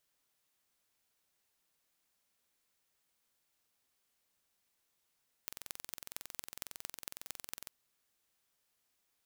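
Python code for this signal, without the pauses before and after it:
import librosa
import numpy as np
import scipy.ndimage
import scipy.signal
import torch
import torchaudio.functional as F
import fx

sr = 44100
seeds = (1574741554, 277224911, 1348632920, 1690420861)

y = fx.impulse_train(sr, length_s=2.2, per_s=21.9, accent_every=5, level_db=-11.5)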